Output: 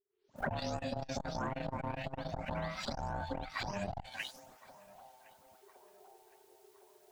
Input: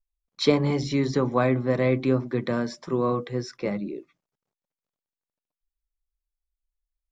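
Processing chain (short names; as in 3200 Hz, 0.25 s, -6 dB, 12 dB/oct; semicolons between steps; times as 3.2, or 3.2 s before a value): spectral delay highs late, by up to 0.36 s; recorder AGC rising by 78 dB/s; low shelf 67 Hz -11 dB; sample leveller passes 1; compressor 20:1, threshold -31 dBFS, peak gain reduction 17 dB; ring modulator 400 Hz; on a send: narrowing echo 1.063 s, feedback 59%, band-pass 870 Hz, level -20 dB; on the sum: core saturation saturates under 410 Hz; gain +2 dB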